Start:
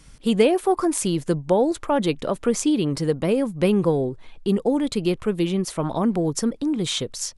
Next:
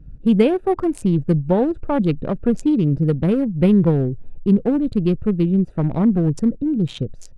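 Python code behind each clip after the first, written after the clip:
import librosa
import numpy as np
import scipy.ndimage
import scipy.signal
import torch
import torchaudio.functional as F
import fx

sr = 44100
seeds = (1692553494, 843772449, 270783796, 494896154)

y = fx.wiener(x, sr, points=41)
y = fx.bass_treble(y, sr, bass_db=11, treble_db=-9)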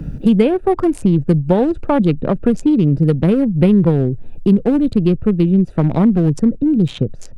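y = fx.band_squash(x, sr, depth_pct=70)
y = y * librosa.db_to_amplitude(3.5)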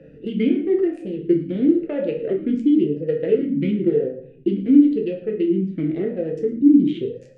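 y = x + 10.0 ** (-17.0 / 20.0) * np.pad(x, (int(110 * sr / 1000.0), 0))[:len(x)]
y = fx.room_shoebox(y, sr, seeds[0], volume_m3=67.0, walls='mixed', distance_m=0.62)
y = fx.vowel_sweep(y, sr, vowels='e-i', hz=0.96)
y = y * librosa.db_to_amplitude(2.0)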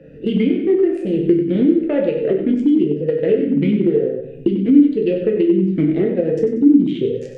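y = fx.recorder_agc(x, sr, target_db=-10.5, rise_db_per_s=25.0, max_gain_db=30)
y = fx.echo_feedback(y, sr, ms=94, feedback_pct=41, wet_db=-9.0)
y = y * librosa.db_to_amplitude(1.5)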